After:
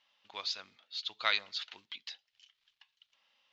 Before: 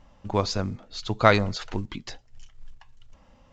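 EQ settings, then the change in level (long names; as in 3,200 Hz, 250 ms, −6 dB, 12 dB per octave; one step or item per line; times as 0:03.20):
resonant band-pass 3,500 Hz, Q 2
high-frequency loss of the air 140 metres
spectral tilt +2.5 dB per octave
0.0 dB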